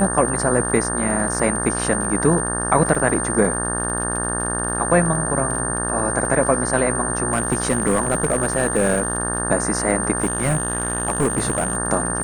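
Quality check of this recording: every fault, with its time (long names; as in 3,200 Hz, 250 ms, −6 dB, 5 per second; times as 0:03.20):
mains buzz 60 Hz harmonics 30 −26 dBFS
surface crackle 40 per second −28 dBFS
whistle 8,800 Hz −24 dBFS
0:02.95: drop-out 3.5 ms
0:07.30–0:09.18: clipping −12.5 dBFS
0:10.22–0:11.75: clipping −14.5 dBFS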